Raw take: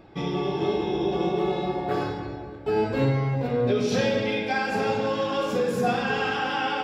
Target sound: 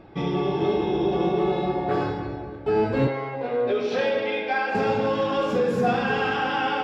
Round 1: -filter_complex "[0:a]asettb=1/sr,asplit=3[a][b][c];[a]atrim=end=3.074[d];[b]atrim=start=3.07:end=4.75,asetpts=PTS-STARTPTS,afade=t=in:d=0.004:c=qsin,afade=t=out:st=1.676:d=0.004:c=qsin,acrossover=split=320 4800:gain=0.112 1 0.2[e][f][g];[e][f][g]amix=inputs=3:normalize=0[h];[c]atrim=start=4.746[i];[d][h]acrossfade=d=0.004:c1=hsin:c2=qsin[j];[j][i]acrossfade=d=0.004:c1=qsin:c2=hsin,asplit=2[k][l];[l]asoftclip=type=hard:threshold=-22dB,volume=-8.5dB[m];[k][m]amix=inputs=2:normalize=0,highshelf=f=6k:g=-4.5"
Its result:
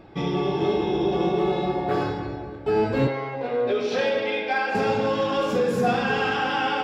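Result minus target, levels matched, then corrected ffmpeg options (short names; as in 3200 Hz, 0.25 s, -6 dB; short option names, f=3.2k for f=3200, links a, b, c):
8000 Hz band +5.0 dB
-filter_complex "[0:a]asettb=1/sr,asplit=3[a][b][c];[a]atrim=end=3.074[d];[b]atrim=start=3.07:end=4.75,asetpts=PTS-STARTPTS,afade=t=in:d=0.004:c=qsin,afade=t=out:st=1.676:d=0.004:c=qsin,acrossover=split=320 4800:gain=0.112 1 0.2[e][f][g];[e][f][g]amix=inputs=3:normalize=0[h];[c]atrim=start=4.746[i];[d][h]acrossfade=d=0.004:c1=hsin:c2=qsin[j];[j][i]acrossfade=d=0.004:c1=qsin:c2=hsin,asplit=2[k][l];[l]asoftclip=type=hard:threshold=-22dB,volume=-8.5dB[m];[k][m]amix=inputs=2:normalize=0,highshelf=f=6k:g=-14"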